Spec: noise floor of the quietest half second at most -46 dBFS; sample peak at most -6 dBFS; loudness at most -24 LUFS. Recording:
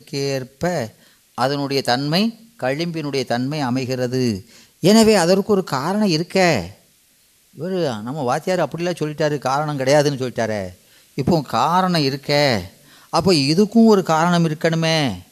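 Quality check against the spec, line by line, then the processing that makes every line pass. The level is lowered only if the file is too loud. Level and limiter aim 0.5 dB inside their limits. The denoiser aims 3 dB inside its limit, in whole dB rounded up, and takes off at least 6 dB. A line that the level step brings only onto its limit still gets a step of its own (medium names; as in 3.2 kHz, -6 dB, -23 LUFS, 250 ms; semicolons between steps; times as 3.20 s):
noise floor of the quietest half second -57 dBFS: pass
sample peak -3.5 dBFS: fail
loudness -18.5 LUFS: fail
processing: trim -6 dB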